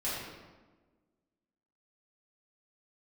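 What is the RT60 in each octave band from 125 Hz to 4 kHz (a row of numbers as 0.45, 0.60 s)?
1.4, 1.7, 1.4, 1.2, 1.0, 0.85 s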